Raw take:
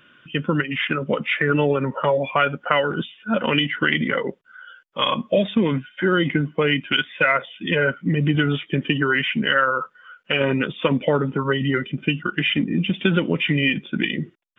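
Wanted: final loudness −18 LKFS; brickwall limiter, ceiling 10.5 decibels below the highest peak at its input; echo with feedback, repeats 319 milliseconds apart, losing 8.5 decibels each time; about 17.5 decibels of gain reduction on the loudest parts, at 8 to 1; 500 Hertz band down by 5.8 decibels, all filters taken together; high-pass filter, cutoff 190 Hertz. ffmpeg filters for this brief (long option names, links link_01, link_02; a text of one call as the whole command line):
ffmpeg -i in.wav -af "highpass=190,equalizer=frequency=500:width_type=o:gain=-7,acompressor=threshold=-34dB:ratio=8,alimiter=level_in=4dB:limit=-24dB:level=0:latency=1,volume=-4dB,aecho=1:1:319|638|957|1276:0.376|0.143|0.0543|0.0206,volume=20.5dB" out.wav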